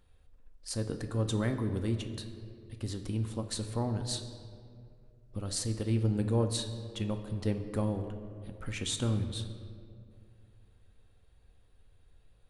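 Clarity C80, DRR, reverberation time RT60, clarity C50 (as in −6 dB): 10.5 dB, 6.0 dB, 2.3 s, 9.0 dB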